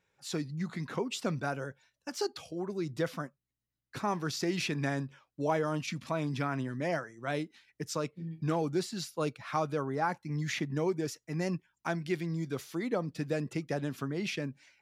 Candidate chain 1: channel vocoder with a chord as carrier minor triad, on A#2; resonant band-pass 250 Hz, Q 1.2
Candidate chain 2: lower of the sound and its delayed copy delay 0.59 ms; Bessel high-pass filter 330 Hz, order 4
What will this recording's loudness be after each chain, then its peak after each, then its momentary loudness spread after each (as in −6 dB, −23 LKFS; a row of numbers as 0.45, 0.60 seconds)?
−40.0, −39.5 LKFS; −23.5, −20.0 dBFS; 8, 8 LU